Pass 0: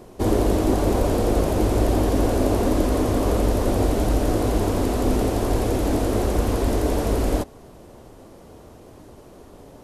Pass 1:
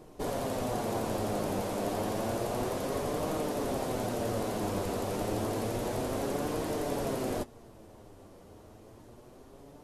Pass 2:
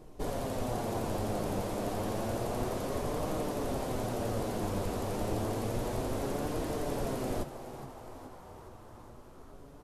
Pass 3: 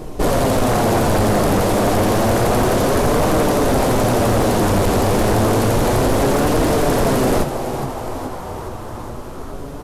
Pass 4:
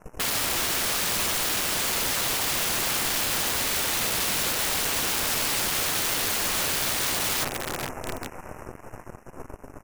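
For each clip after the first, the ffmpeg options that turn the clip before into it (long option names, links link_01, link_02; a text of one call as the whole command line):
ffmpeg -i in.wav -af "afftfilt=real='re*lt(hypot(re,im),0.501)':imag='im*lt(hypot(re,im),0.501)':win_size=1024:overlap=0.75,flanger=delay=6.3:depth=4.2:regen=51:speed=0.3:shape=triangular,volume=-3.5dB" out.wav
ffmpeg -i in.wav -filter_complex "[0:a]lowshelf=frequency=79:gain=11.5,asplit=2[link_01][link_02];[link_02]asplit=7[link_03][link_04][link_05][link_06][link_07][link_08][link_09];[link_03]adelay=418,afreqshift=120,volume=-13dB[link_10];[link_04]adelay=836,afreqshift=240,volume=-17.2dB[link_11];[link_05]adelay=1254,afreqshift=360,volume=-21.3dB[link_12];[link_06]adelay=1672,afreqshift=480,volume=-25.5dB[link_13];[link_07]adelay=2090,afreqshift=600,volume=-29.6dB[link_14];[link_08]adelay=2508,afreqshift=720,volume=-33.8dB[link_15];[link_09]adelay=2926,afreqshift=840,volume=-37.9dB[link_16];[link_10][link_11][link_12][link_13][link_14][link_15][link_16]amix=inputs=7:normalize=0[link_17];[link_01][link_17]amix=inputs=2:normalize=0,volume=-3dB" out.wav
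ffmpeg -i in.wav -af "aeval=exprs='0.1*sin(PI/2*2.82*val(0)/0.1)':channel_layout=same,volume=8.5dB" out.wav
ffmpeg -i in.wav -af "aeval=exprs='0.282*(cos(1*acos(clip(val(0)/0.282,-1,1)))-cos(1*PI/2))+0.0794*(cos(3*acos(clip(val(0)/0.282,-1,1)))-cos(3*PI/2))+0.00794*(cos(5*acos(clip(val(0)/0.282,-1,1)))-cos(5*PI/2))+0.01*(cos(7*acos(clip(val(0)/0.282,-1,1)))-cos(7*PI/2))+0.01*(cos(8*acos(clip(val(0)/0.282,-1,1)))-cos(8*PI/2))':channel_layout=same,asuperstop=centerf=3900:order=12:qfactor=1.6,aeval=exprs='(mod(11.2*val(0)+1,2)-1)/11.2':channel_layout=same" out.wav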